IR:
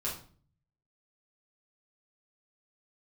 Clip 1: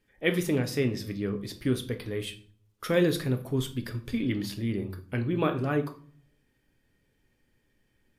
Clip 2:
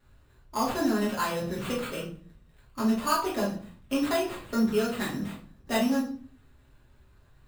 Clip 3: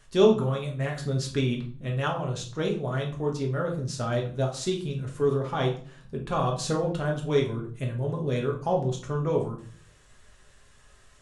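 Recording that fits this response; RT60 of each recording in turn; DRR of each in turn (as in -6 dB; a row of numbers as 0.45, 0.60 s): 2; 0.45, 0.45, 0.45 s; 6.5, -6.5, -0.5 dB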